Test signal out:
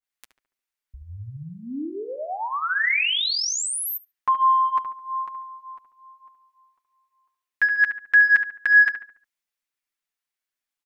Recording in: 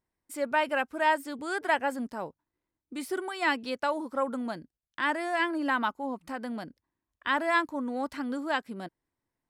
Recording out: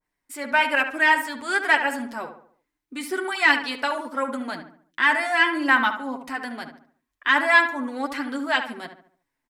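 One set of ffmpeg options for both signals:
-filter_complex "[0:a]equalizer=f=125:t=o:w=1:g=-11,equalizer=f=500:t=o:w=1:g=-4,equalizer=f=2000:t=o:w=1:g=5,acontrast=64,flanger=delay=6.7:depth=1.4:regen=-9:speed=1.1:shape=sinusoidal,asplit=2[s0][s1];[s1]adelay=71,lowpass=f=2200:p=1,volume=0.398,asplit=2[s2][s3];[s3]adelay=71,lowpass=f=2200:p=1,volume=0.44,asplit=2[s4][s5];[s5]adelay=71,lowpass=f=2200:p=1,volume=0.44,asplit=2[s6][s7];[s7]adelay=71,lowpass=f=2200:p=1,volume=0.44,asplit=2[s8][s9];[s9]adelay=71,lowpass=f=2200:p=1,volume=0.44[s10];[s0][s2][s4][s6][s8][s10]amix=inputs=6:normalize=0,adynamicequalizer=threshold=0.0178:dfrequency=1600:dqfactor=0.7:tfrequency=1600:tqfactor=0.7:attack=5:release=100:ratio=0.375:range=2:mode=boostabove:tftype=highshelf,volume=1.19"

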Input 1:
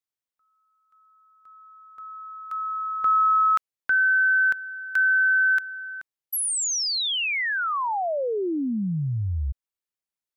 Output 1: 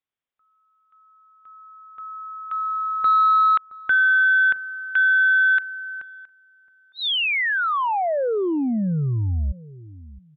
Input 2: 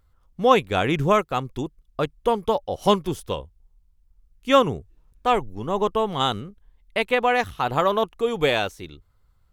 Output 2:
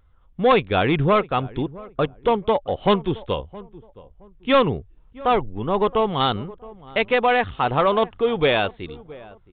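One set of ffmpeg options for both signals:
-filter_complex "[0:a]aresample=8000,asoftclip=type=tanh:threshold=0.211,aresample=44100,asplit=2[s0][s1];[s1]adelay=669,lowpass=f=1000:p=1,volume=0.112,asplit=2[s2][s3];[s3]adelay=669,lowpass=f=1000:p=1,volume=0.29[s4];[s0][s2][s4]amix=inputs=3:normalize=0,volume=1.58"

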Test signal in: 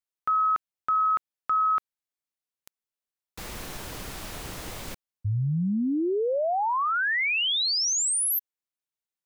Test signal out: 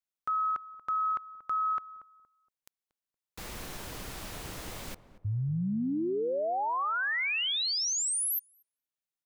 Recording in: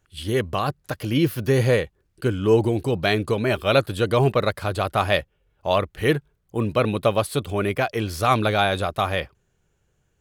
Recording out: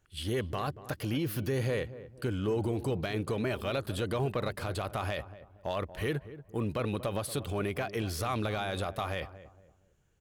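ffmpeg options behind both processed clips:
-filter_complex "[0:a]acompressor=threshold=0.0794:ratio=6:attack=0.1:release=93:knee=6:detection=peak,asplit=2[s0][s1];[s1]adelay=234,lowpass=f=1000:p=1,volume=0.211,asplit=2[s2][s3];[s3]adelay=234,lowpass=f=1000:p=1,volume=0.36,asplit=2[s4][s5];[s5]adelay=234,lowpass=f=1000:p=1,volume=0.36[s6];[s2][s4][s6]amix=inputs=3:normalize=0[s7];[s0][s7]amix=inputs=2:normalize=0,volume=0.668"

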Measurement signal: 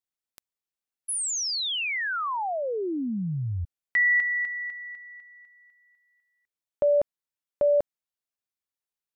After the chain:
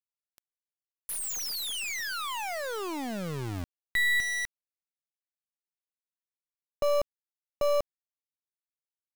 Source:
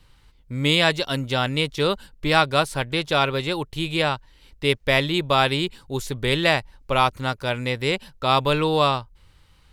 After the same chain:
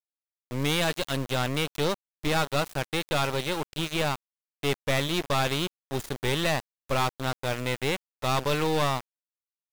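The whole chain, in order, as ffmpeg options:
-af "aeval=exprs='val(0)*gte(abs(val(0)),0.0422)':c=same,aeval=exprs='(tanh(11.2*val(0)+0.7)-tanh(0.7))/11.2':c=same"

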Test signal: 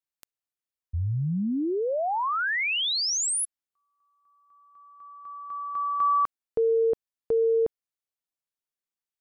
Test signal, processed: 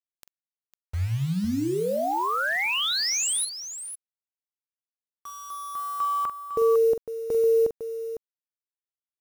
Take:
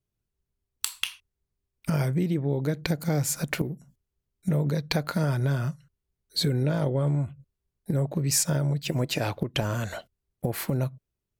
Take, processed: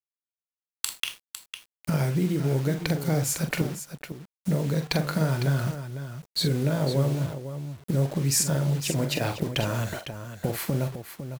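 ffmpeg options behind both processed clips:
-af "acrusher=bits=6:mix=0:aa=0.000001,aecho=1:1:44|504:0.376|0.316"

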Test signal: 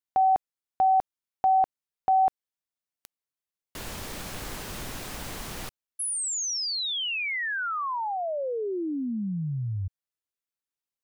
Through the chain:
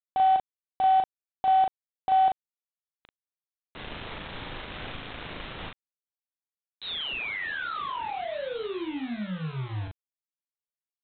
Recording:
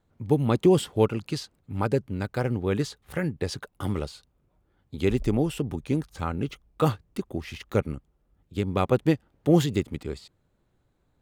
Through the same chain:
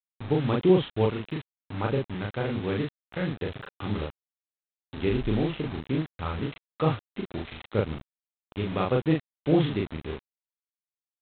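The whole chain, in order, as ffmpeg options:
-filter_complex "[0:a]aresample=8000,acrusher=bits=5:mix=0:aa=0.000001,aresample=44100,asplit=2[s0][s1];[s1]adelay=38,volume=0.794[s2];[s0][s2]amix=inputs=2:normalize=0,volume=0.631"

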